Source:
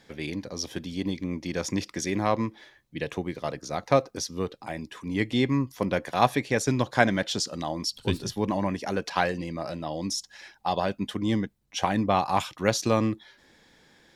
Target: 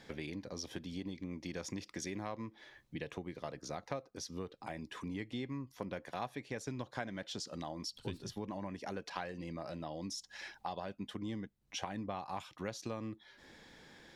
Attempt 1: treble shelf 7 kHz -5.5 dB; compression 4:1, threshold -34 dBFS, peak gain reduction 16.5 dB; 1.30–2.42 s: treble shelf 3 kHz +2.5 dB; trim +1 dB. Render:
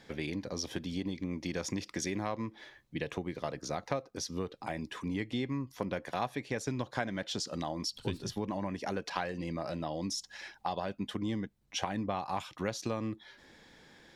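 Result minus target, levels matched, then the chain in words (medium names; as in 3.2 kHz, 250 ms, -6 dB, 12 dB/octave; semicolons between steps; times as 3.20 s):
compression: peak gain reduction -6.5 dB
treble shelf 7 kHz -5.5 dB; compression 4:1, threshold -42.5 dBFS, peak gain reduction 23 dB; 1.30–2.42 s: treble shelf 3 kHz +2.5 dB; trim +1 dB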